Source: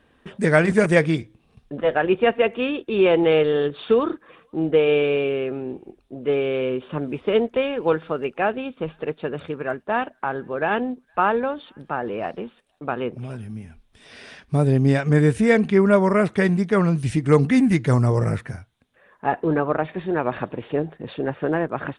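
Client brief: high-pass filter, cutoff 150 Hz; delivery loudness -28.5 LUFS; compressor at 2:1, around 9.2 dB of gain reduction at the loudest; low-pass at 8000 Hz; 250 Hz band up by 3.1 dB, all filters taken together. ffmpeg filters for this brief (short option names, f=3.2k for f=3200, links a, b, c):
-af "highpass=150,lowpass=8k,equalizer=f=250:t=o:g=5,acompressor=threshold=-27dB:ratio=2,volume=-1dB"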